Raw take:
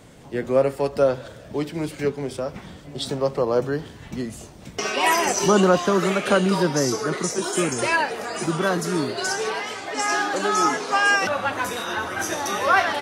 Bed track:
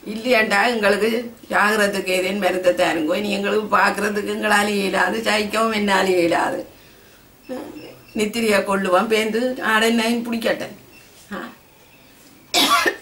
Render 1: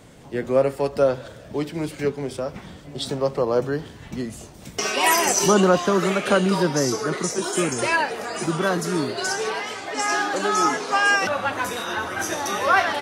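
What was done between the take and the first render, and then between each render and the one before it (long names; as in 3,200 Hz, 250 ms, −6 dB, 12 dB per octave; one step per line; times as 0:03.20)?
0:04.54–0:05.54: high-shelf EQ 6,500 Hz +9.5 dB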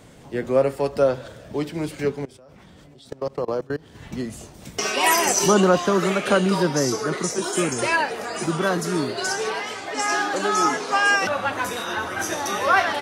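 0:02.25–0:03.95: output level in coarse steps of 24 dB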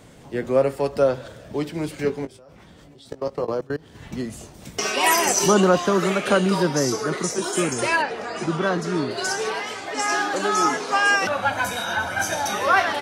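0:02.03–0:03.53: double-tracking delay 18 ms −8 dB
0:08.02–0:09.11: high-frequency loss of the air 84 metres
0:11.42–0:12.54: comb filter 1.3 ms, depth 68%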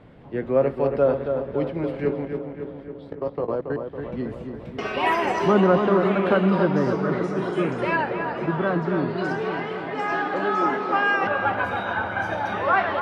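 high-frequency loss of the air 440 metres
feedback echo with a low-pass in the loop 277 ms, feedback 65%, low-pass 2,500 Hz, level −6 dB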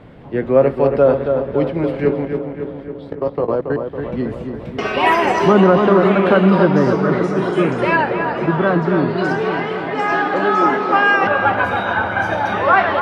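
level +7.5 dB
brickwall limiter −2 dBFS, peak gain reduction 3 dB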